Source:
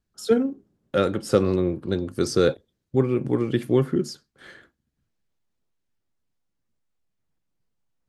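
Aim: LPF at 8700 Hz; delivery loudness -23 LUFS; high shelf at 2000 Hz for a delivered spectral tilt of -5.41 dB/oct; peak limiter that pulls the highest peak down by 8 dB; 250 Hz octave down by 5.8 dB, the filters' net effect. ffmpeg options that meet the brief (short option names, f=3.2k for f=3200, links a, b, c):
-af "lowpass=8.7k,equalizer=f=250:t=o:g=-8.5,highshelf=f=2k:g=3,volume=5.5dB,alimiter=limit=-9.5dB:level=0:latency=1"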